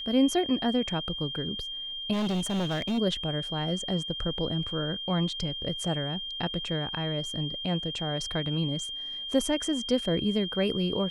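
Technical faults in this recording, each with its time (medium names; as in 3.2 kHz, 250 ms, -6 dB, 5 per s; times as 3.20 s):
whine 3.2 kHz -34 dBFS
2.12–2.99 s: clipped -25.5 dBFS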